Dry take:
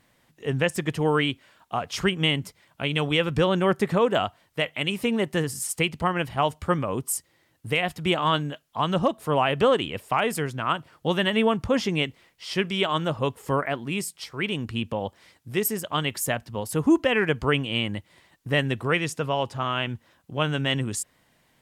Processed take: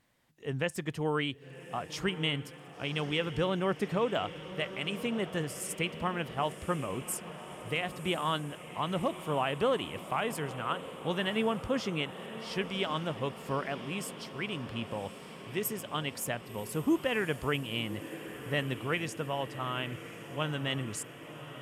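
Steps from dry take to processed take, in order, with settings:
feedback delay with all-pass diffusion 1,091 ms, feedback 69%, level −13 dB
level −8.5 dB

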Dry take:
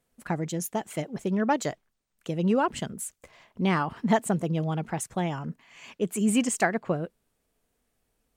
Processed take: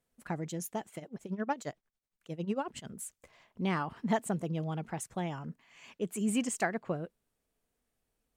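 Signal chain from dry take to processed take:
0:00.87–0:02.88: amplitude tremolo 11 Hz, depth 83%
level −7 dB

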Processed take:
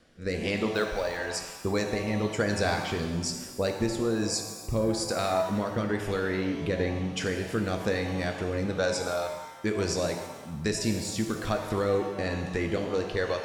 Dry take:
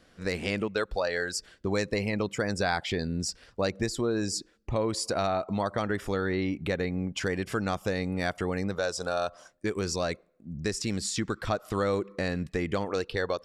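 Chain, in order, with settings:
0:00.73–0:01.17: hold until the input has moved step −44.5 dBFS
rotating-speaker cabinet horn 1.1 Hz
reverb with rising layers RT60 1.2 s, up +7 semitones, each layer −8 dB, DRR 4 dB
level +1.5 dB

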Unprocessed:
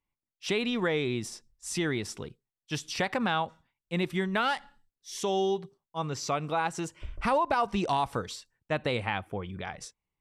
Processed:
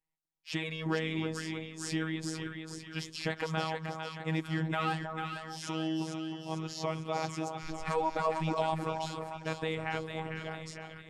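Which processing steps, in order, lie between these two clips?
echo with a time of its own for lows and highs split 1,300 Hz, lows 288 ms, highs 413 ms, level −5 dB
speed change −8%
phases set to zero 159 Hz
level −3 dB

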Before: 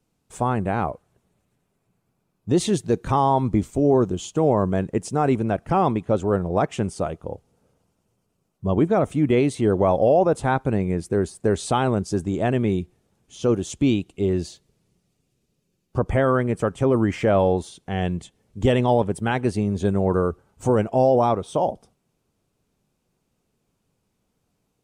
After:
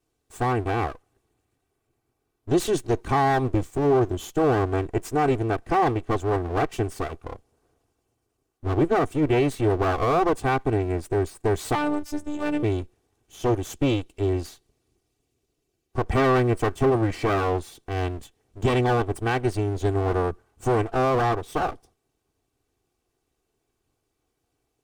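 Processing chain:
lower of the sound and its delayed copy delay 2.6 ms
0:11.75–0:12.63: phases set to zero 296 Hz
0:16.10–0:16.90: leveller curve on the samples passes 1
level −1.5 dB

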